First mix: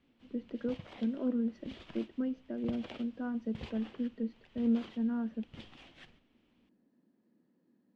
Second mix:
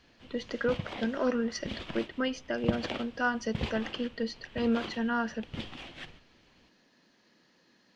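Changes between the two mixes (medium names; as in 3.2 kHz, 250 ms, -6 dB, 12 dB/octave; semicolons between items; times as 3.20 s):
speech: remove band-pass filter 240 Hz, Q 1.8; background +11.0 dB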